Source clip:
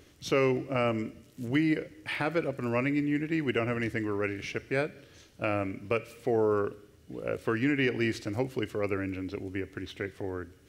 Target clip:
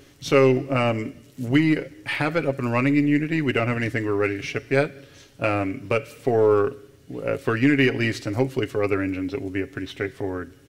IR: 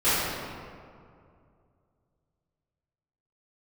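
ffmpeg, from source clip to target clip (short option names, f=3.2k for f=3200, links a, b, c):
-af "aeval=exprs='0.168*(cos(1*acos(clip(val(0)/0.168,-1,1)))-cos(1*PI/2))+0.00266*(cos(6*acos(clip(val(0)/0.168,-1,1)))-cos(6*PI/2))+0.00211*(cos(7*acos(clip(val(0)/0.168,-1,1)))-cos(7*PI/2))':c=same,aecho=1:1:7.3:0.47,volume=6.5dB"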